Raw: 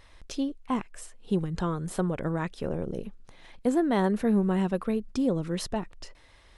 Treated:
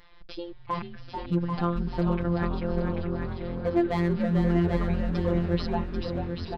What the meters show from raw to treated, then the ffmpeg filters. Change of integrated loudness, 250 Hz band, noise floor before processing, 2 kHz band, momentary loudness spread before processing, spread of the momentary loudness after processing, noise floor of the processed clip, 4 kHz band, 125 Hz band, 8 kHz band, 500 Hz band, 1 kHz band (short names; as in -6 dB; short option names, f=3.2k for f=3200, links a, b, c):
+1.0 dB, 0.0 dB, -56 dBFS, +2.0 dB, 13 LU, 9 LU, -46 dBFS, +0.5 dB, +5.5 dB, under -15 dB, +0.5 dB, +1.5 dB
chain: -filter_complex "[0:a]aresample=11025,aresample=44100,asoftclip=type=hard:threshold=-18dB,equalizer=f=1.2k:w=1.5:g=2.5,asplit=2[a][b];[b]aecho=0:1:789|1578|2367:0.501|0.115|0.0265[c];[a][c]amix=inputs=2:normalize=0,afftfilt=real='hypot(re,im)*cos(PI*b)':imag='0':win_size=1024:overlap=0.75,asplit=2[d][e];[e]asplit=7[f][g][h][i][j][k][l];[f]adelay=439,afreqshift=-130,volume=-5.5dB[m];[g]adelay=878,afreqshift=-260,volume=-11dB[n];[h]adelay=1317,afreqshift=-390,volume=-16.5dB[o];[i]adelay=1756,afreqshift=-520,volume=-22dB[p];[j]adelay=2195,afreqshift=-650,volume=-27.6dB[q];[k]adelay=2634,afreqshift=-780,volume=-33.1dB[r];[l]adelay=3073,afreqshift=-910,volume=-38.6dB[s];[m][n][o][p][q][r][s]amix=inputs=7:normalize=0[t];[d][t]amix=inputs=2:normalize=0,volume=2.5dB"